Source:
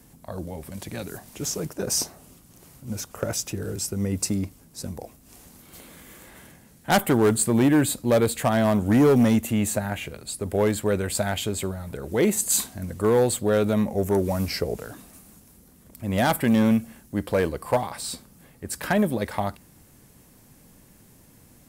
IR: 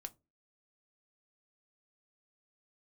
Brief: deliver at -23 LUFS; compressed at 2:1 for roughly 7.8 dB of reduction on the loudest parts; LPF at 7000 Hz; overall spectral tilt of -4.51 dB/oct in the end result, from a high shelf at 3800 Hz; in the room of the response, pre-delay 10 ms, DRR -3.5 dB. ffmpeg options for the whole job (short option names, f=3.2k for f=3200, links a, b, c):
-filter_complex "[0:a]lowpass=7k,highshelf=f=3.8k:g=5,acompressor=threshold=-30dB:ratio=2,asplit=2[a][b];[1:a]atrim=start_sample=2205,adelay=10[c];[b][c]afir=irnorm=-1:irlink=0,volume=8dB[d];[a][d]amix=inputs=2:normalize=0,volume=2dB"